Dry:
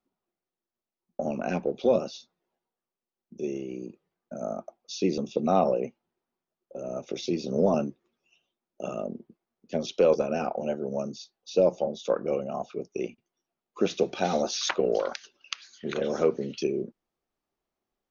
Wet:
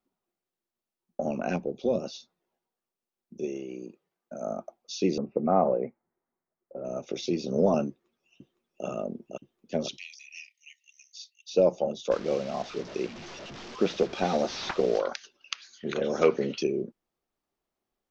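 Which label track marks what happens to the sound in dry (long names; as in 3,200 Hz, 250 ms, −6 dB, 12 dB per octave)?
1.560000	2.040000	parametric band 1,500 Hz −10 dB 2.9 octaves
3.450000	4.470000	low-shelf EQ 170 Hz −10.5 dB
5.180000	6.850000	elliptic low-pass filter 2,100 Hz
7.890000	8.860000	delay throw 510 ms, feedback 85%, level −3.5 dB
9.970000	11.520000	linear-phase brick-wall high-pass 1,800 Hz
12.110000	14.990000	linear delta modulator 32 kbit/s, step −36.5 dBFS
16.210000	16.610000	parametric band 3,900 Hz → 670 Hz +13 dB 2.8 octaves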